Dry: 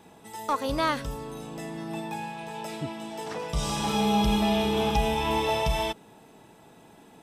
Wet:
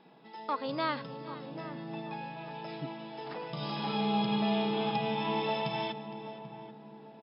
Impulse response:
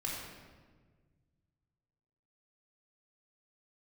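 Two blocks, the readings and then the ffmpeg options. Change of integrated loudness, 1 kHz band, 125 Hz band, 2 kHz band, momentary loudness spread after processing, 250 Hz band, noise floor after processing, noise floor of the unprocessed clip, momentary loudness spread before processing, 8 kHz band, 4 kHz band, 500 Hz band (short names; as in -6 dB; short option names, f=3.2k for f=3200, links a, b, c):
-6.0 dB, -5.5 dB, -7.0 dB, -6.0 dB, 15 LU, -5.0 dB, -52 dBFS, -53 dBFS, 14 LU, under -40 dB, -6.0 dB, -6.0 dB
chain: -filter_complex "[0:a]asplit=2[a][b];[b]adelay=788,lowpass=f=910:p=1,volume=-10.5dB,asplit=2[c][d];[d]adelay=788,lowpass=f=910:p=1,volume=0.46,asplit=2[e][f];[f]adelay=788,lowpass=f=910:p=1,volume=0.46,asplit=2[g][h];[h]adelay=788,lowpass=f=910:p=1,volume=0.46,asplit=2[i][j];[j]adelay=788,lowpass=f=910:p=1,volume=0.46[k];[c][e][g][i][k]amix=inputs=5:normalize=0[l];[a][l]amix=inputs=2:normalize=0,afftfilt=real='re*between(b*sr/4096,120,5300)':imag='im*between(b*sr/4096,120,5300)':win_size=4096:overlap=0.75,asplit=2[m][n];[n]aecho=0:1:462:0.141[o];[m][o]amix=inputs=2:normalize=0,volume=-6dB"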